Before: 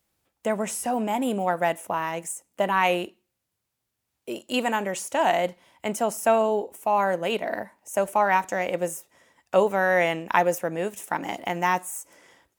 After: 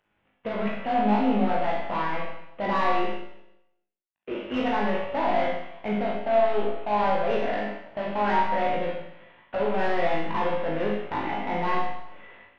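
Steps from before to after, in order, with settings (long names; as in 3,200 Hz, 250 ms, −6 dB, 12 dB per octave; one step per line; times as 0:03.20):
variable-slope delta modulation 16 kbit/s
brickwall limiter −18 dBFS, peak gain reduction 7.5 dB
soft clipping −24 dBFS, distortion −14 dB
on a send: flutter between parallel walls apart 3.3 metres, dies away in 0.3 s
on the sum: four-comb reverb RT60 0.81 s, combs from 31 ms, DRR −0.5 dB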